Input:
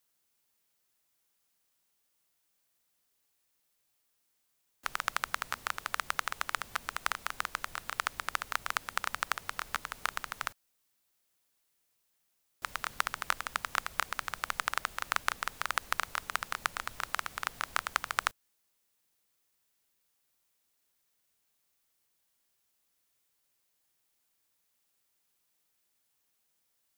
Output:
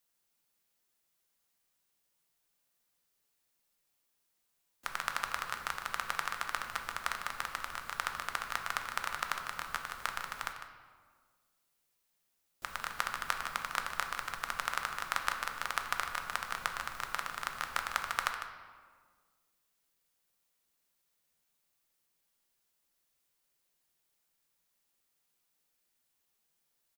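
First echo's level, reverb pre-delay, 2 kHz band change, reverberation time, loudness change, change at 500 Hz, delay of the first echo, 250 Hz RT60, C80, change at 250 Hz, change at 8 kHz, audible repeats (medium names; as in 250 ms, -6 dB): -11.0 dB, 4 ms, -1.5 dB, 1.7 s, -1.5 dB, -1.0 dB, 152 ms, 2.0 s, 6.5 dB, -0.5 dB, -2.0 dB, 1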